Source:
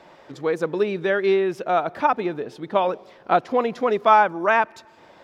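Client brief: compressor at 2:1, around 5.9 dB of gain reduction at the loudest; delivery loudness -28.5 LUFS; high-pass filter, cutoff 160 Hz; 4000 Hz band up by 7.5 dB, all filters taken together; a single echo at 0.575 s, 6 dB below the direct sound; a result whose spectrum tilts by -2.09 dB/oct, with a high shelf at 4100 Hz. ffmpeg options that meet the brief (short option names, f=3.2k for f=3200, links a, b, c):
-af "highpass=160,equalizer=f=4k:t=o:g=6.5,highshelf=f=4.1k:g=5,acompressor=threshold=-20dB:ratio=2,aecho=1:1:575:0.501,volume=-5dB"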